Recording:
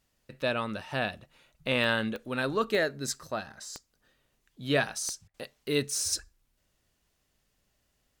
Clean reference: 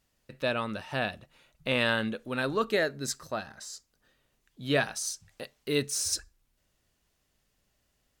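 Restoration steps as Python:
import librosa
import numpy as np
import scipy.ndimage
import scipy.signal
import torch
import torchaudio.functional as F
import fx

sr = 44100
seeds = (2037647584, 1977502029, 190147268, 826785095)

y = fx.fix_declick_ar(x, sr, threshold=10.0)
y = fx.fix_interpolate(y, sr, at_s=(5.28,), length_ms=60.0)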